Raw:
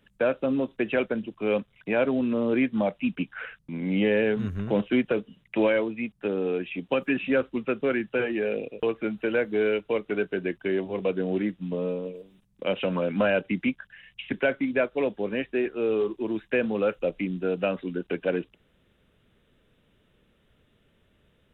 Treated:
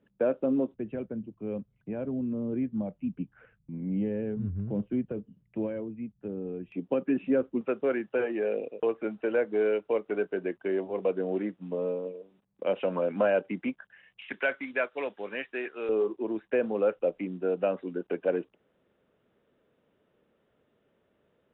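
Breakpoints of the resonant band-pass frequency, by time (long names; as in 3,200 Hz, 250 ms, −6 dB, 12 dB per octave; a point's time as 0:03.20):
resonant band-pass, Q 0.76
340 Hz
from 0:00.74 100 Hz
from 0:06.72 300 Hz
from 0:07.61 630 Hz
from 0:14.22 1,500 Hz
from 0:15.89 590 Hz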